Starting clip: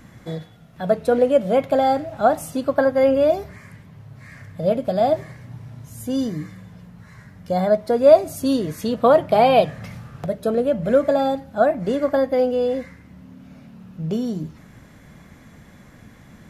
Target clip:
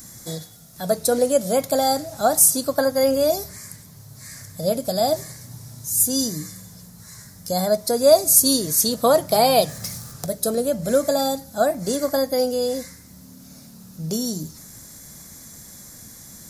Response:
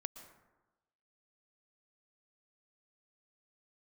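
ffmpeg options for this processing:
-filter_complex "[0:a]asettb=1/sr,asplit=3[a][b][c];[a]atrim=end=9.684[d];[b]atrim=start=9.68:end=10.14,asetpts=PTS-STARTPTS,afade=t=in:d=0.004:c=qsin,afade=t=out:st=0.456:d=0.004:c=qsin,aeval=exprs='val(0)+0.5*0.00335*sgn(val(0))':c=same[e];[c]atrim=start=10.136[f];[d][e]acrossfade=d=0.004:c1=hsin:c2=qsin[g];[g][f]acrossfade=d=0.004:c1=qsin:c2=hsin,aexciter=amount=13.3:drive=5.3:freq=4.3k,volume=-2.5dB"

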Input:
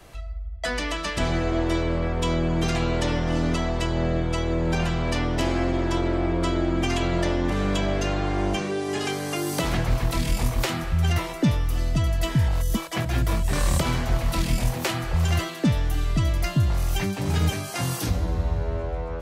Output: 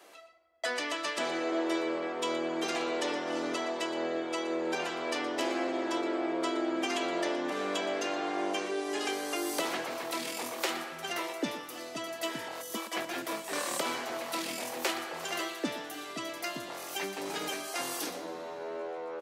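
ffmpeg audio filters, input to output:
-af "highpass=f=310:w=0.5412,highpass=f=310:w=1.3066,aecho=1:1:119:0.188,volume=-4.5dB"

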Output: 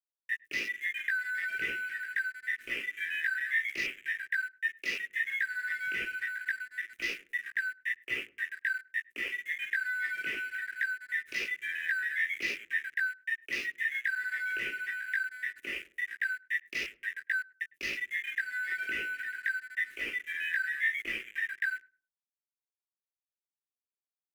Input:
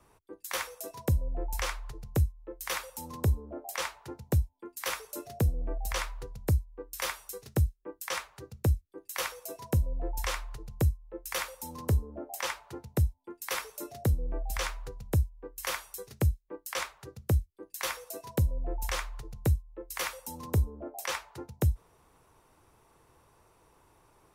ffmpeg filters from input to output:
-filter_complex "[0:a]afftfilt=real='real(if(lt(b,272),68*(eq(floor(b/68),0)*1+eq(floor(b/68),1)*0+eq(floor(b/68),2)*3+eq(floor(b/68),3)*2)+mod(b,68),b),0)':imag='imag(if(lt(b,272),68*(eq(floor(b/68),0)*1+eq(floor(b/68),1)*0+eq(floor(b/68),2)*3+eq(floor(b/68),3)*2)+mod(b,68),b),0)':win_size=2048:overlap=0.75,asplit=2[a][b];[b]highpass=f=720:p=1,volume=26dB,asoftclip=type=tanh:threshold=-16dB[c];[a][c]amix=inputs=2:normalize=0,lowpass=f=2.2k:p=1,volume=-6dB,flanger=delay=16.5:depth=2.7:speed=1.1,afwtdn=0.0178,equalizer=f=5.2k:w=1.4:g=13,aeval=exprs='sgn(val(0))*max(abs(val(0))-0.00562,0)':c=same,firequalizer=gain_entry='entry(120,0);entry(370,8);entry(840,-25);entry(1800,11);entry(4300,-7);entry(9700,5)':delay=0.05:min_phase=1,asplit=2[d][e];[e]adelay=104,lowpass=f=830:p=1,volume=-19dB,asplit=2[f][g];[g]adelay=104,lowpass=f=830:p=1,volume=0.37,asplit=2[h][i];[i]adelay=104,lowpass=f=830:p=1,volume=0.37[j];[d][f][h][j]amix=inputs=4:normalize=0,volume=-9dB"

